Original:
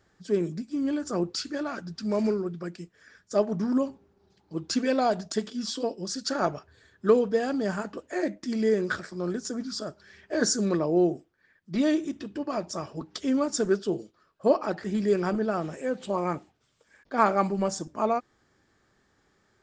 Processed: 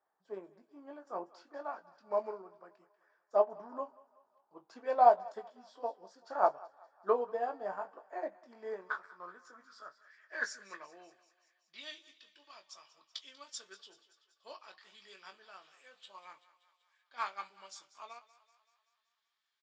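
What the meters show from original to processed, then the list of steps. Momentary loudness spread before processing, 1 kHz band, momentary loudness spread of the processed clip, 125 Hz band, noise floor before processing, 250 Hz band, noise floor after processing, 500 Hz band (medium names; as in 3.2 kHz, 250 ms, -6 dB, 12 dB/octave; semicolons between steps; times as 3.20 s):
10 LU, -3.0 dB, 23 LU, under -30 dB, -69 dBFS, -28.5 dB, -82 dBFS, -10.0 dB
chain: bass shelf 410 Hz -10.5 dB; doubling 21 ms -7 dB; thinning echo 191 ms, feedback 62%, high-pass 460 Hz, level -14.5 dB; band-pass sweep 750 Hz -> 3.4 kHz, 8.33–11.95 s; peaking EQ 1 kHz +6.5 dB 0.36 oct; upward expansion 1.5:1, over -49 dBFS; trim +6 dB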